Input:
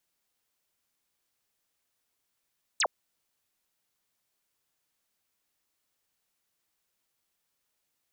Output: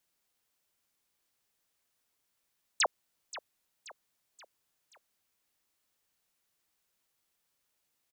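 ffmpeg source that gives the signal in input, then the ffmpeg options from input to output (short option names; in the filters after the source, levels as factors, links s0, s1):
-f lavfi -i "aevalsrc='0.0708*clip(t/0.002,0,1)*clip((0.06-t)/0.002,0,1)*sin(2*PI*8900*0.06/log(470/8900)*(exp(log(470/8900)*t/0.06)-1))':d=0.06:s=44100"
-af "aecho=1:1:529|1058|1587|2116:0.168|0.0823|0.0403|0.0198"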